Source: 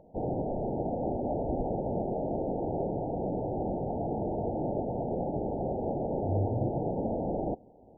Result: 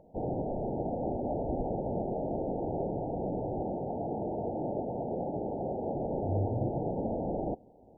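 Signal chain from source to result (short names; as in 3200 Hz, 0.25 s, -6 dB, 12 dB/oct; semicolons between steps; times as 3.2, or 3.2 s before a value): 3.62–5.94 low shelf 79 Hz -10.5 dB; gain -1.5 dB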